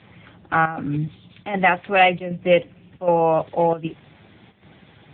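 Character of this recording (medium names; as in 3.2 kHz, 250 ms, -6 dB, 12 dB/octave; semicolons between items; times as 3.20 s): chopped level 1.3 Hz, depth 65%, duty 85%; a quantiser's noise floor 10-bit, dither none; AMR-NB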